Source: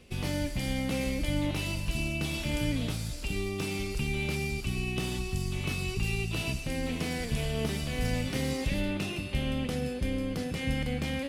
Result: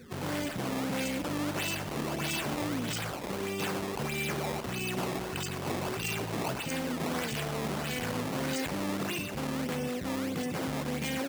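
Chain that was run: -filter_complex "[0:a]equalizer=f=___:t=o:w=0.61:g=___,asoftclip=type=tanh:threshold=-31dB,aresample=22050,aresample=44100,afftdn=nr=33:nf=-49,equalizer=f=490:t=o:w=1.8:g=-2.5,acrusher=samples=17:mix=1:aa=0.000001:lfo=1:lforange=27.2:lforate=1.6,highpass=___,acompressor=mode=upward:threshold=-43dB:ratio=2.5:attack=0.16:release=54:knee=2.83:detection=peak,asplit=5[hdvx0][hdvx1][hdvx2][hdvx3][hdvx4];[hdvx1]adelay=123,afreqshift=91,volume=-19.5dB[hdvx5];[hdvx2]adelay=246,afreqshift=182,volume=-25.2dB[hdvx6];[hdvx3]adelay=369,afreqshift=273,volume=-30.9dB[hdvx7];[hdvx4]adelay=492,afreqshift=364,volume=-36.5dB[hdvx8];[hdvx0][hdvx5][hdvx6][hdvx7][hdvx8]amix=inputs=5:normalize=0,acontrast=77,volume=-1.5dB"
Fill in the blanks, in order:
8500, 13.5, 160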